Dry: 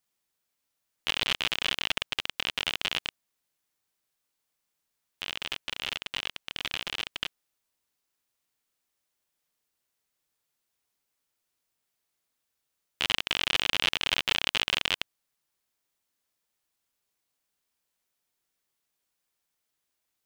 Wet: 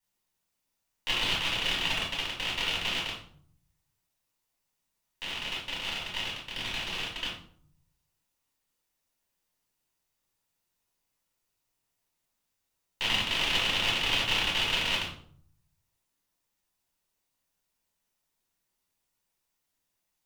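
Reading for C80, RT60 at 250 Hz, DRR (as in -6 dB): 9.5 dB, 0.90 s, -5.5 dB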